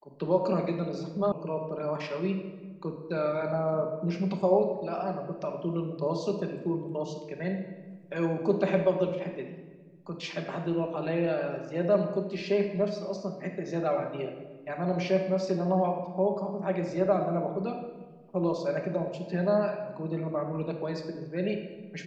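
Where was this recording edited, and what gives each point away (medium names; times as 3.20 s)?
1.32 s: sound stops dead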